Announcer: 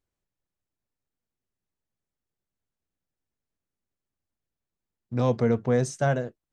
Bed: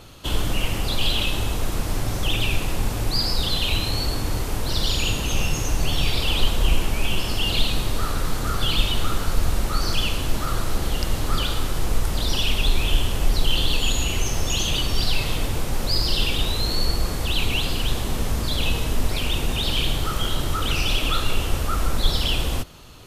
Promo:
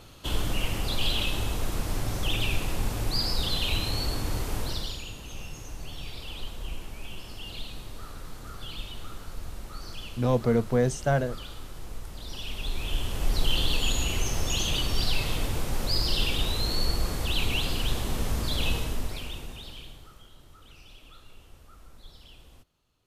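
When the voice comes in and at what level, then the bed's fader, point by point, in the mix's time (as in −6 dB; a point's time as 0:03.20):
5.05 s, −0.5 dB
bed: 0:04.62 −5 dB
0:05.06 −17 dB
0:12.19 −17 dB
0:13.43 −4.5 dB
0:18.73 −4.5 dB
0:20.29 −29 dB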